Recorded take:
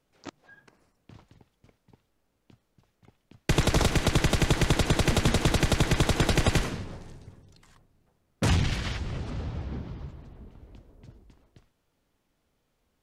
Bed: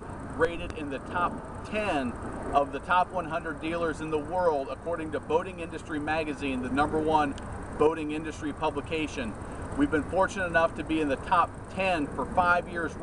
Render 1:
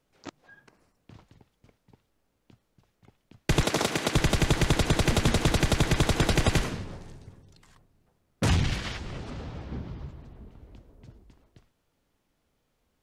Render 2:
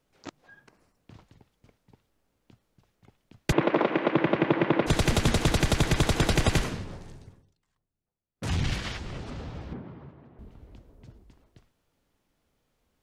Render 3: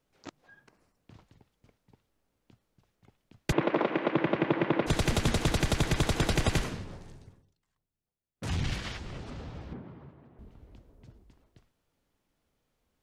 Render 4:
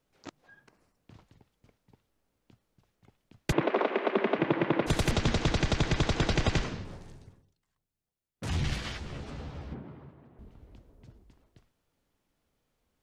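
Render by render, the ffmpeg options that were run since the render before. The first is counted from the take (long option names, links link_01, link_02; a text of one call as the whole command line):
ffmpeg -i in.wav -filter_complex "[0:a]asettb=1/sr,asplit=3[link_01][link_02][link_03];[link_01]atrim=end=3.644[link_04];[link_02]atrim=start=3.64:end=4.15,asetpts=PTS-STARTPTS,afade=type=in:duration=0.004:curve=qsin,afade=type=out:start_time=0.506:duration=0.004:curve=qsin,highpass=220[link_05];[link_03]atrim=start=4.146[link_06];[link_04][link_05]acrossfade=duration=0.004:curve1=hsin:curve2=qsin[link_07];[link_07][link_06]acrossfade=duration=0.004:curve1=qsin:curve2=hsin,asettb=1/sr,asplit=3[link_08][link_09][link_10];[link_08]atrim=end=8.784[link_11];[link_09]atrim=start=8.78:end=9.72,asetpts=PTS-STARTPTS,afade=type=in:duration=0.004:curve=qsin,afade=type=out:start_time=0.936:duration=0.004:curve=qsin,equalizer=frequency=74:width=0.56:gain=-6.5[link_12];[link_10]atrim=start=9.716[link_13];[link_11][link_12]acrossfade=duration=0.004:curve1=hsin:curve2=qsin[link_14];[link_14][link_13]acrossfade=duration=0.004:curve1=qsin:curve2=hsin" out.wav
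ffmpeg -i in.wav -filter_complex "[0:a]asplit=3[link_01][link_02][link_03];[link_01]afade=type=out:start_time=3.51:duration=0.02[link_04];[link_02]highpass=frequency=160:width=0.5412,highpass=frequency=160:width=1.3066,equalizer=frequency=330:width_type=q:width=4:gain=8,equalizer=frequency=550:width_type=q:width=4:gain=7,equalizer=frequency=1000:width_type=q:width=4:gain=5,lowpass=frequency=2600:width=0.5412,lowpass=frequency=2600:width=1.3066,afade=type=in:start_time=3.51:duration=0.02,afade=type=out:start_time=4.86:duration=0.02[link_05];[link_03]afade=type=in:start_time=4.86:duration=0.02[link_06];[link_04][link_05][link_06]amix=inputs=3:normalize=0,asettb=1/sr,asplit=3[link_07][link_08][link_09];[link_07]atrim=end=9.734[link_10];[link_08]atrim=start=9.73:end=10.39,asetpts=PTS-STARTPTS,afade=type=in:duration=0.004:curve=qsin,afade=type=out:start_time=0.656:duration=0.004:curve=qsin,highpass=160,lowpass=2000[link_11];[link_09]atrim=start=10.386[link_12];[link_10][link_11]acrossfade=duration=0.004:curve1=hsin:curve2=qsin[link_13];[link_13][link_12]acrossfade=duration=0.004:curve1=qsin:curve2=hsin,asplit=3[link_14][link_15][link_16];[link_14]atrim=end=7.55,asetpts=PTS-STARTPTS,afade=type=out:start_time=7.21:duration=0.34:silence=0.0841395[link_17];[link_15]atrim=start=7.55:end=8.35,asetpts=PTS-STARTPTS,volume=-21.5dB[link_18];[link_16]atrim=start=8.35,asetpts=PTS-STARTPTS,afade=type=in:duration=0.34:silence=0.0841395[link_19];[link_17][link_18][link_19]concat=n=3:v=0:a=1" out.wav
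ffmpeg -i in.wav -af "volume=-3.5dB" out.wav
ffmpeg -i in.wav -filter_complex "[0:a]asettb=1/sr,asplit=3[link_01][link_02][link_03];[link_01]atrim=end=3.674[link_04];[link_02]atrim=start=3.67:end=4.39,asetpts=PTS-STARTPTS,afade=type=in:duration=0.004:curve=qsin,afade=type=out:start_time=0.716:duration=0.004:curve=qsin,afreqshift=64[link_05];[link_03]atrim=start=4.386[link_06];[link_04][link_05]acrossfade=duration=0.004:curve1=hsin:curve2=qsin[link_07];[link_07][link_06]acrossfade=duration=0.004:curve1=qsin:curve2=hsin,asettb=1/sr,asplit=3[link_08][link_09][link_10];[link_08]atrim=end=5.114[link_11];[link_09]atrim=start=5.11:end=6.85,asetpts=PTS-STARTPTS,afade=type=in:duration=0.004:curve=qsin,afade=type=out:start_time=1.736:duration=0.004:curve=qsin,lowpass=frequency=6500:width=0.5412,lowpass=frequency=6500:width=1.3066[link_12];[link_10]atrim=start=6.846[link_13];[link_11][link_12]acrossfade=duration=0.004:curve1=hsin:curve2=qsin[link_14];[link_14][link_13]acrossfade=duration=0.004:curve1=qsin:curve2=hsin,asettb=1/sr,asplit=3[link_15][link_16][link_17];[link_15]atrim=end=8.524[link_18];[link_16]atrim=start=8.52:end=10,asetpts=PTS-STARTPTS,afade=type=in:duration=0.004:curve=qsin,afade=type=out:start_time=1.476:duration=0.004:curve=qsin,asplit=2[link_19][link_20];[link_20]adelay=14,volume=-7dB[link_21];[link_19][link_21]amix=inputs=2:normalize=0,atrim=end_sample=65268[link_22];[link_17]atrim=start=9.996[link_23];[link_18][link_22]acrossfade=duration=0.004:curve1=hsin:curve2=qsin[link_24];[link_24][link_23]acrossfade=duration=0.004:curve1=qsin:curve2=hsin" out.wav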